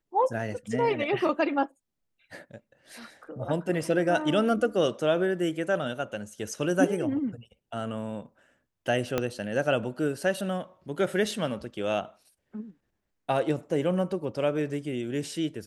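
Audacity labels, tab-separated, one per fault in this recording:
9.180000	9.180000	click −12 dBFS

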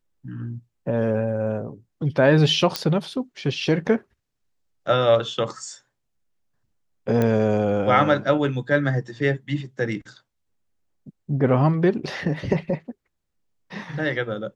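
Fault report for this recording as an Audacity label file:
2.760000	2.760000	click −7 dBFS
7.220000	7.220000	click −11 dBFS

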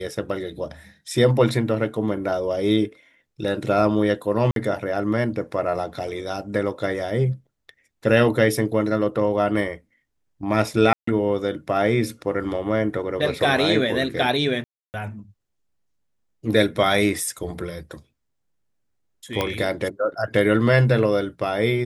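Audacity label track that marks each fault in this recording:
4.510000	4.560000	drop-out 52 ms
10.930000	11.070000	drop-out 144 ms
14.640000	14.940000	drop-out 299 ms
19.410000	19.410000	click −8 dBFS

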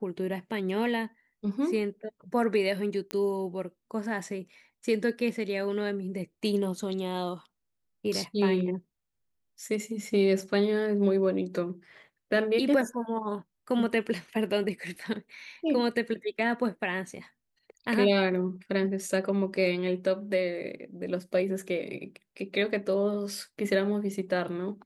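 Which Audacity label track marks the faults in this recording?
3.110000	3.110000	click −17 dBFS

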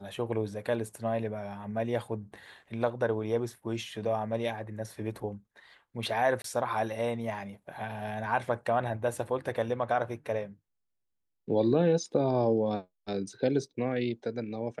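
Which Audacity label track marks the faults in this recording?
6.420000	6.440000	drop-out 23 ms

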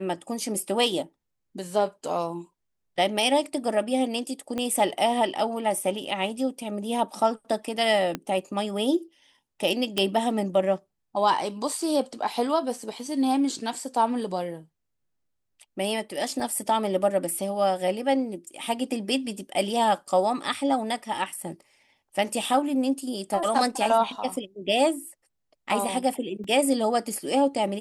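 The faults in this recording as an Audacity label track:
4.580000	4.580000	click −17 dBFS
8.150000	8.150000	click −14 dBFS
9.980000	9.980000	click −10 dBFS
16.400000	16.400000	drop-out 2.2 ms
26.440000	26.440000	drop-out 3.6 ms

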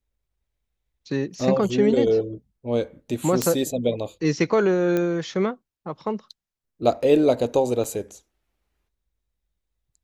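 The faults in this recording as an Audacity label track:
3.420000	3.420000	click −7 dBFS
4.970000	4.970000	click −12 dBFS
7.840000	7.850000	drop-out 5.2 ms

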